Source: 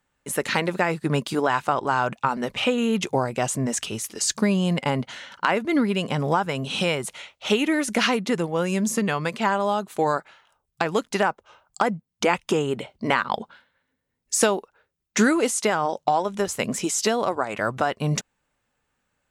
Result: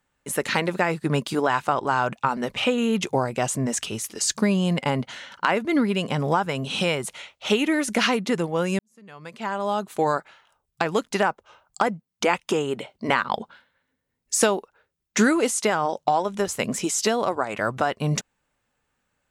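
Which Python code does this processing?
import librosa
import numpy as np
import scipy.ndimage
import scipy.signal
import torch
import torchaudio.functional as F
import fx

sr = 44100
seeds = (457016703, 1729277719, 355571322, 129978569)

y = fx.low_shelf(x, sr, hz=120.0, db=-11.0, at=(11.87, 13.09))
y = fx.edit(y, sr, fx.fade_in_span(start_s=8.79, length_s=1.01, curve='qua'), tone=tone)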